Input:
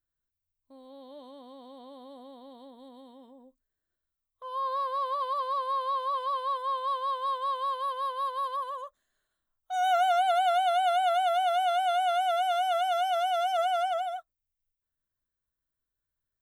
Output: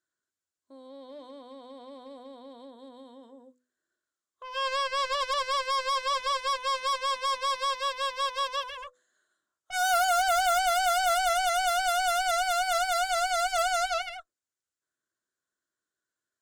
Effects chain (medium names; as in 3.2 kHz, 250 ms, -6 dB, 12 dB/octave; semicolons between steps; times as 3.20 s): cabinet simulation 240–9400 Hz, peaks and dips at 350 Hz +7 dB, 830 Hz -5 dB, 1.5 kHz +7 dB, 2.5 kHz -8 dB, 7.1 kHz +7 dB; hum notches 50/100/150/200/250/300/350/400/450/500 Hz; Chebyshev shaper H 7 -9 dB, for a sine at -21.5 dBFS